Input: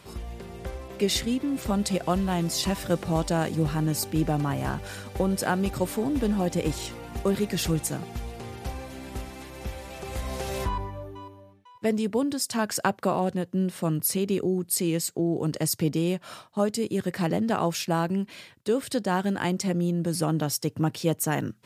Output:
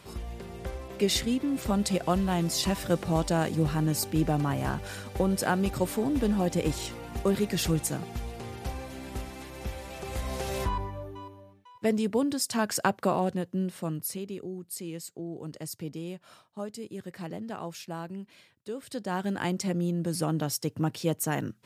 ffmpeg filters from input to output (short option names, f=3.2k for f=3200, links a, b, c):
-af "volume=8dB,afade=t=out:st=13.11:d=1.22:silence=0.281838,afade=t=in:st=18.8:d=0.59:silence=0.354813"